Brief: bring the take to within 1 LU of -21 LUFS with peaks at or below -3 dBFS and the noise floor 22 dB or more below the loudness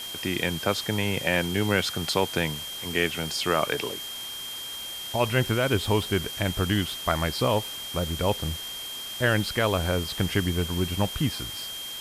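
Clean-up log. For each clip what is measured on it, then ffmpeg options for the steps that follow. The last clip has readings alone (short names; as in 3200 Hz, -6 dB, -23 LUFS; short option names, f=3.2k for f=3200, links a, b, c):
steady tone 3200 Hz; tone level -35 dBFS; noise floor -36 dBFS; noise floor target -49 dBFS; loudness -26.5 LUFS; peak -8.0 dBFS; loudness target -21.0 LUFS
-> -af "bandreject=f=3.2k:w=30"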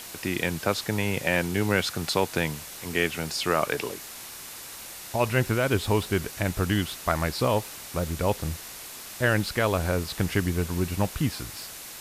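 steady tone none; noise floor -41 dBFS; noise floor target -49 dBFS
-> -af "afftdn=nr=8:nf=-41"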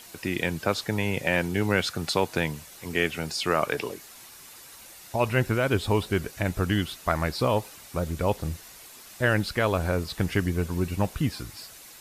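noise floor -48 dBFS; noise floor target -49 dBFS
-> -af "afftdn=nr=6:nf=-48"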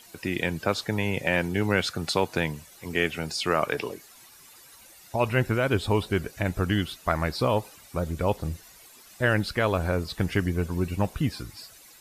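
noise floor -52 dBFS; loudness -27.0 LUFS; peak -8.0 dBFS; loudness target -21.0 LUFS
-> -af "volume=6dB,alimiter=limit=-3dB:level=0:latency=1"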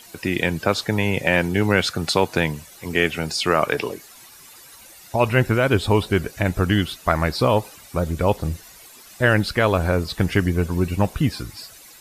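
loudness -21.0 LUFS; peak -3.0 dBFS; noise floor -46 dBFS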